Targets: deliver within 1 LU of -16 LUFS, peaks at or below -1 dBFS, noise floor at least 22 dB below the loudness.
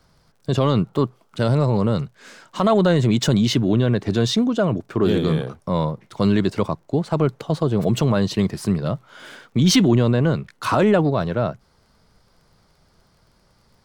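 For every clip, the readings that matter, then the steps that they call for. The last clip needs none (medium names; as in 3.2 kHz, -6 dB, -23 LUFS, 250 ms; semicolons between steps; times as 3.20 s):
tick rate 30 per s; loudness -20.0 LUFS; peak level -7.0 dBFS; loudness target -16.0 LUFS
-> de-click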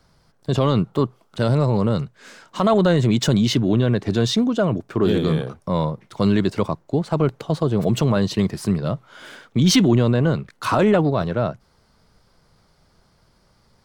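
tick rate 0.29 per s; loudness -20.0 LUFS; peak level -7.0 dBFS; loudness target -16.0 LUFS
-> trim +4 dB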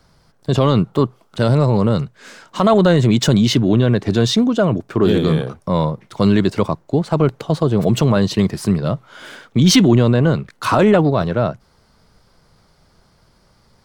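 loudness -16.0 LUFS; peak level -3.0 dBFS; noise floor -57 dBFS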